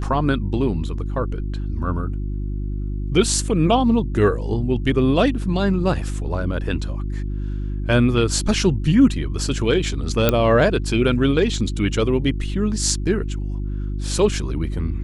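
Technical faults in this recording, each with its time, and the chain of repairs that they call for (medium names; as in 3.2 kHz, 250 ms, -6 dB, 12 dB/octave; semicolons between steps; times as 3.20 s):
hum 50 Hz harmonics 7 -25 dBFS
10.29 s: pop -2 dBFS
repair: de-click; de-hum 50 Hz, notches 7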